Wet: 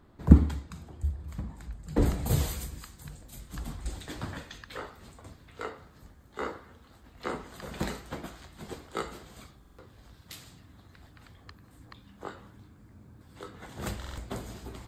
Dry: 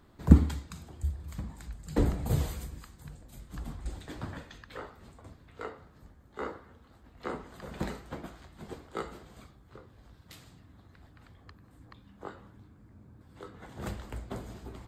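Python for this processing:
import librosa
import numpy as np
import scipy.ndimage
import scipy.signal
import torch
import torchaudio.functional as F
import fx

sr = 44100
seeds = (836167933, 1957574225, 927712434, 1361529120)

y = fx.high_shelf(x, sr, hz=2300.0, db=fx.steps((0.0, -6.0), (2.01, 7.0)))
y = fx.buffer_glitch(y, sr, at_s=(9.6, 13.99), block=2048, repeats=3)
y = y * librosa.db_to_amplitude(1.5)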